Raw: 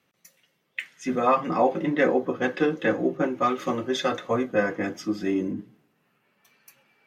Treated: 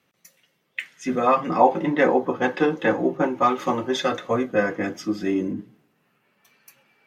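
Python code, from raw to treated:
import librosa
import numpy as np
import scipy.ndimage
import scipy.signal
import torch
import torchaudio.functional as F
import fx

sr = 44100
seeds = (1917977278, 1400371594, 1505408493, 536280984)

y = fx.peak_eq(x, sr, hz=890.0, db=10.0, octaves=0.41, at=(1.6, 4.02))
y = F.gain(torch.from_numpy(y), 2.0).numpy()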